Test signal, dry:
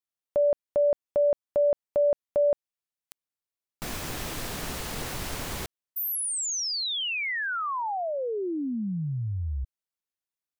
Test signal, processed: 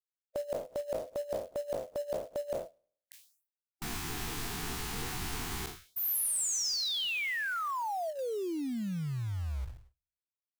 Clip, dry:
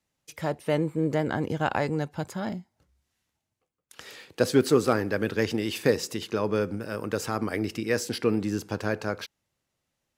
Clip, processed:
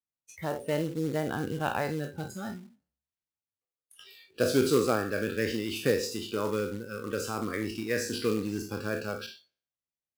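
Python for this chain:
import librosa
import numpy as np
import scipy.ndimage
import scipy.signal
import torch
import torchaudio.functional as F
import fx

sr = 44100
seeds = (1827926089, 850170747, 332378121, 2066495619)

y = fx.spec_trails(x, sr, decay_s=0.58)
y = fx.noise_reduce_blind(y, sr, reduce_db=20)
y = fx.quant_float(y, sr, bits=2)
y = F.gain(torch.from_numpy(y), -5.0).numpy()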